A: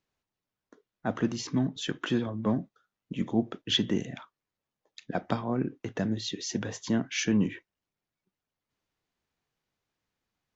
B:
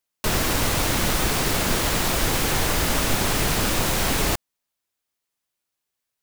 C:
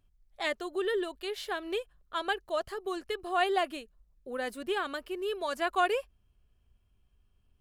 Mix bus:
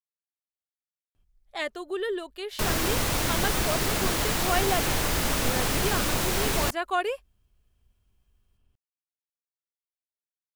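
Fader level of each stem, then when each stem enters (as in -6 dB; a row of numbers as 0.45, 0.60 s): off, -4.0 dB, +0.5 dB; off, 2.35 s, 1.15 s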